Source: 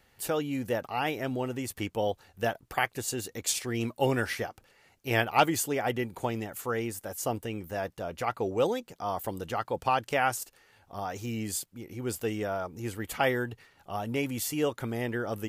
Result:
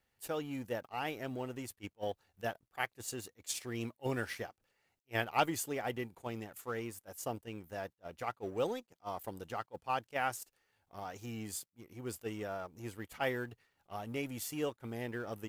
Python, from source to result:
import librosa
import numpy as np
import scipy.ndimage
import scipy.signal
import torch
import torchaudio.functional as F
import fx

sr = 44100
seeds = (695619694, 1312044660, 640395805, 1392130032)

y = fx.law_mismatch(x, sr, coded='A')
y = fx.attack_slew(y, sr, db_per_s=550.0)
y = F.gain(torch.from_numpy(y), -7.0).numpy()